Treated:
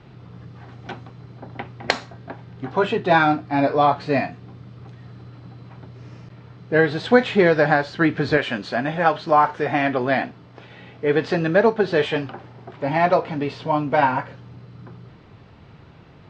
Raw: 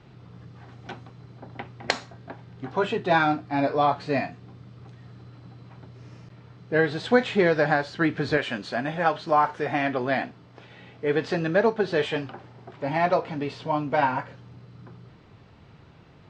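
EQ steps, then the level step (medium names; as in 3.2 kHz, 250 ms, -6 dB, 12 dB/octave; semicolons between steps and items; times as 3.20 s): distance through air 55 m; +5.0 dB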